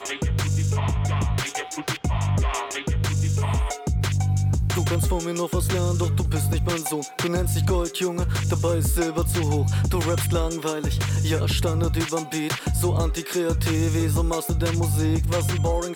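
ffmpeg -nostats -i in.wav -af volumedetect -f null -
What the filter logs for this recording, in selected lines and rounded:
mean_volume: -22.6 dB
max_volume: -13.0 dB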